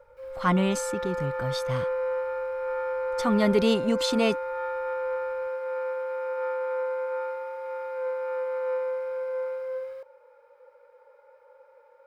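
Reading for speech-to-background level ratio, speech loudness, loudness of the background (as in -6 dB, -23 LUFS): 4.0 dB, -27.0 LUFS, -31.0 LUFS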